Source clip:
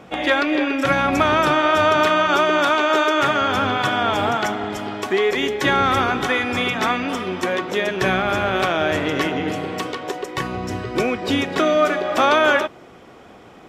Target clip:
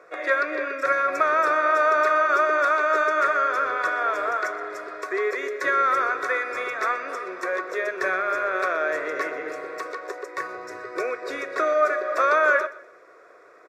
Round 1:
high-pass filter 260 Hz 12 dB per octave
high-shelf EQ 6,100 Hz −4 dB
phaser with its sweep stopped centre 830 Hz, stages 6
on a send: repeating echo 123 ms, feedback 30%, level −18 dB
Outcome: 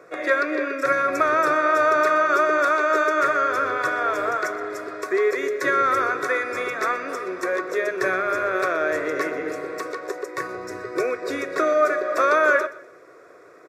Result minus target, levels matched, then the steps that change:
250 Hz band +6.5 dB; 8,000 Hz band +4.0 dB
change: high-pass filter 540 Hz 12 dB per octave
change: high-shelf EQ 6,100 Hz −13.5 dB

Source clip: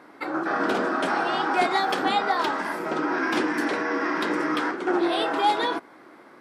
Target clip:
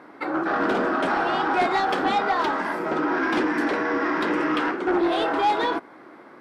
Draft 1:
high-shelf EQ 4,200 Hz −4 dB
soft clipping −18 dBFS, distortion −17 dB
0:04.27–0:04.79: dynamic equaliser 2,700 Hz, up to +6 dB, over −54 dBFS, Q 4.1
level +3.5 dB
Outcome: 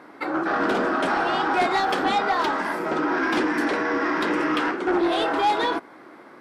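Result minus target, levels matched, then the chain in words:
8,000 Hz band +4.0 dB
high-shelf EQ 4,200 Hz −10.5 dB
soft clipping −18 dBFS, distortion −18 dB
0:04.27–0:04.79: dynamic equaliser 2,700 Hz, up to +6 dB, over −54 dBFS, Q 4.1
level +3.5 dB

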